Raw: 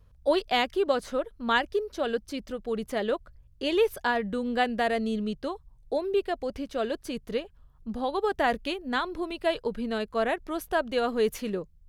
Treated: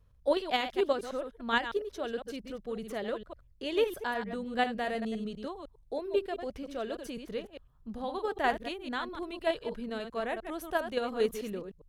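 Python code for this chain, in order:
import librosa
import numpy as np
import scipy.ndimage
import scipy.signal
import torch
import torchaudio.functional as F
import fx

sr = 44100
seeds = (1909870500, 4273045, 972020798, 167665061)

p1 = fx.reverse_delay(x, sr, ms=101, wet_db=-7.5)
p2 = fx.notch(p1, sr, hz=4700.0, q=22.0)
p3 = fx.level_steps(p2, sr, step_db=23)
p4 = p2 + F.gain(torch.from_numpy(p3), -1.0).numpy()
p5 = fx.quant_float(p4, sr, bits=8, at=(5.1, 6.07))
y = F.gain(torch.from_numpy(p5), -8.0).numpy()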